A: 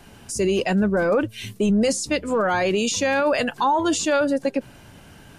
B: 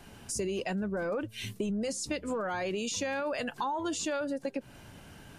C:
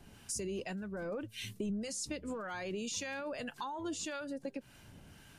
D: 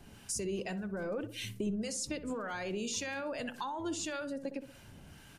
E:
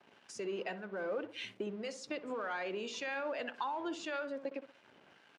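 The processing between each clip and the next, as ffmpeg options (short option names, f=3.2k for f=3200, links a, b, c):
-af "acompressor=threshold=-26dB:ratio=6,volume=-4.5dB"
-filter_complex "[0:a]equalizer=f=700:w=0.49:g=-4.5,acrossover=split=860[a][b];[a]aeval=exprs='val(0)*(1-0.5/2+0.5/2*cos(2*PI*1.8*n/s))':c=same[c];[b]aeval=exprs='val(0)*(1-0.5/2-0.5/2*cos(2*PI*1.8*n/s))':c=same[d];[c][d]amix=inputs=2:normalize=0,volume=-2dB"
-filter_complex "[0:a]asplit=2[a][b];[b]adelay=62,lowpass=f=1.1k:p=1,volume=-10dB,asplit=2[c][d];[d]adelay=62,lowpass=f=1.1k:p=1,volume=0.48,asplit=2[e][f];[f]adelay=62,lowpass=f=1.1k:p=1,volume=0.48,asplit=2[g][h];[h]adelay=62,lowpass=f=1.1k:p=1,volume=0.48,asplit=2[i][j];[j]adelay=62,lowpass=f=1.1k:p=1,volume=0.48[k];[a][c][e][g][i][k]amix=inputs=6:normalize=0,volume=2dB"
-af "aeval=exprs='sgn(val(0))*max(abs(val(0))-0.00141,0)':c=same,highpass=390,lowpass=3k,volume=2.5dB"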